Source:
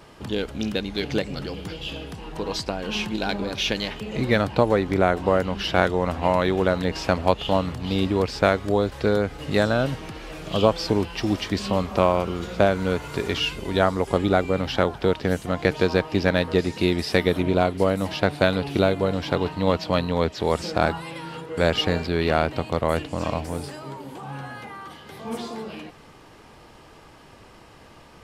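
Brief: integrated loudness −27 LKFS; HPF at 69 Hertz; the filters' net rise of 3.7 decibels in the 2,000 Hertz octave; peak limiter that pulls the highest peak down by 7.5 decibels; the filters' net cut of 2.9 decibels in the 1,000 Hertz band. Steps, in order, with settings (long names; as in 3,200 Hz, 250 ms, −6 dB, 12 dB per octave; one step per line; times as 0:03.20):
high-pass filter 69 Hz
parametric band 1,000 Hz −6 dB
parametric band 2,000 Hz +7 dB
level −2 dB
brickwall limiter −10.5 dBFS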